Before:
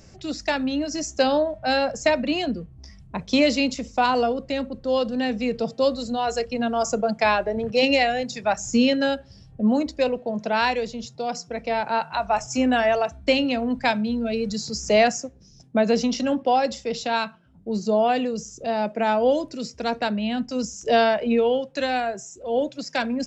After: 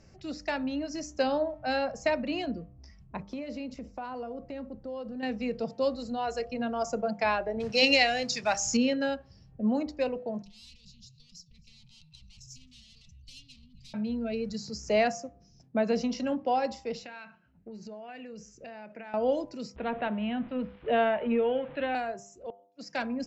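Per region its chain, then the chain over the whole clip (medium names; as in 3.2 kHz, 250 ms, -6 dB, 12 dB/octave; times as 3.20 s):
3.22–5.23 s: block-companded coder 7-bit + treble shelf 2.2 kHz -11 dB + compression 4:1, threshold -28 dBFS
7.60–8.77 s: companding laws mixed up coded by mu + peaking EQ 5.5 kHz +14 dB 2.3 oct
10.42–13.94 s: feedback delay 265 ms, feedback 33%, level -23 dB + valve stage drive 27 dB, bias 0.35 + elliptic band-stop 150–3500 Hz
16.99–19.14 s: high-order bell 2 kHz +8 dB 1.1 oct + compression 16:1, threshold -29 dBFS + feedback comb 210 Hz, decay 0.86 s, mix 30%
19.76–21.95 s: jump at every zero crossing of -34.5 dBFS + steep low-pass 3.6 kHz 72 dB/octave
22.46–22.90 s: high-pass 180 Hz + inverted gate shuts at -21 dBFS, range -40 dB
whole clip: low-pass 5.4 kHz 12 dB/octave; peaking EQ 3.5 kHz -6.5 dB 0.37 oct; de-hum 99.63 Hz, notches 13; trim -7 dB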